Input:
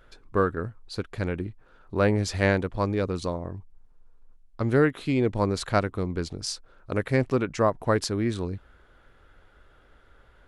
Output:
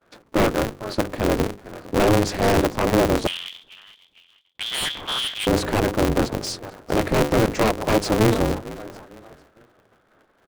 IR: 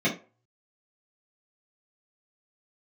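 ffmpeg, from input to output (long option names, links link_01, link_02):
-filter_complex "[0:a]lowshelf=frequency=330:gain=-6.5,bandreject=frequency=50:width_type=h:width=6,bandreject=frequency=100:width_type=h:width=6,bandreject=frequency=150:width_type=h:width=6,bandreject=frequency=200:width_type=h:width=6,bandreject=frequency=250:width_type=h:width=6,bandreject=frequency=300:width_type=h:width=6,bandreject=frequency=350:width_type=h:width=6,bandreject=frequency=400:width_type=h:width=6,asplit=4[link_01][link_02][link_03][link_04];[link_02]adelay=450,afreqshift=41,volume=-20.5dB[link_05];[link_03]adelay=900,afreqshift=82,volume=-27.4dB[link_06];[link_04]adelay=1350,afreqshift=123,volume=-34.4dB[link_07];[link_01][link_05][link_06][link_07]amix=inputs=4:normalize=0,agate=range=-33dB:threshold=-51dB:ratio=3:detection=peak,highpass=frequency=160:width=0.5412,highpass=frequency=160:width=1.3066,asettb=1/sr,asplit=3[link_08][link_09][link_10];[link_08]atrim=end=3.274[link_11];[link_09]atrim=start=3.27:end=5.47,asetpts=PTS-STARTPTS,afade=type=in:duration=0.004:curve=qsin,afade=type=out:start_time=2.196:duration=0.004:curve=qsin,lowpass=frequency=3100:width_type=q:width=0.5098,lowpass=frequency=3100:width_type=q:width=0.6013,lowpass=frequency=3100:width_type=q:width=0.9,lowpass=frequency=3100:width_type=q:width=2.563,afreqshift=-3600[link_12];[link_10]atrim=start=5.466[link_13];[link_11][link_12]acrossfade=duration=0.004:curve1=hsin:curve2=qsin[link_14];[link_14][link_13]acrossfade=duration=0.004:curve1=qsin:curve2=hsin,aeval=exprs='0.398*sin(PI/2*5.62*val(0)/0.398)':channel_layout=same,tiltshelf=frequency=930:gain=7.5,aeval=exprs='val(0)*sgn(sin(2*PI*110*n/s))':channel_layout=same,volume=-8dB"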